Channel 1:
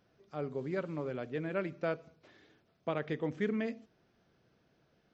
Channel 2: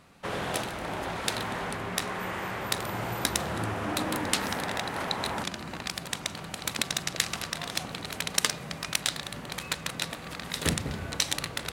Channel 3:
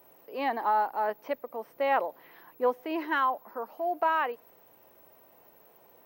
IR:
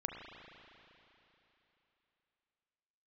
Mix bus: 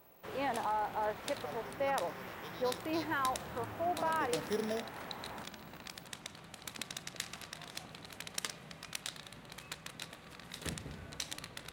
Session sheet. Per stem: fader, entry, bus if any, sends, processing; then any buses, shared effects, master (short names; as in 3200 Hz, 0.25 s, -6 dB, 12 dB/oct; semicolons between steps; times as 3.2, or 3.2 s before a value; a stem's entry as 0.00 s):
4.11 s -17 dB -> 4.4 s -8 dB, 1.10 s, no send, sample sorter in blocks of 8 samples; LFO bell 0.29 Hz 560–4200 Hz +17 dB
-16.0 dB, 0.00 s, send -7.5 dB, dry
-4.5 dB, 0.00 s, no send, limiter -21.5 dBFS, peak gain reduction 6 dB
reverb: on, RT60 3.3 s, pre-delay 33 ms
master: dry